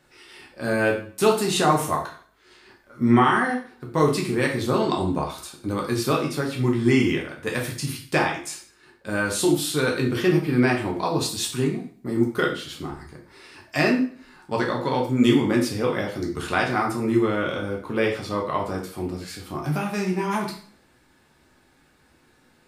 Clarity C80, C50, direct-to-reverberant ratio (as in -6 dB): 11.5 dB, 7.5 dB, -1.5 dB